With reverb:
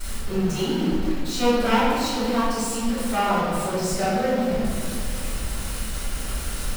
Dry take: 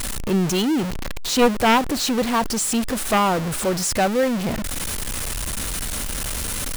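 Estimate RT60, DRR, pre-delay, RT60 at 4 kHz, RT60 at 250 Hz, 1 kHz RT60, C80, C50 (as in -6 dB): 2.3 s, -16.0 dB, 3 ms, 1.4 s, 3.0 s, 2.0 s, 0.0 dB, -2.0 dB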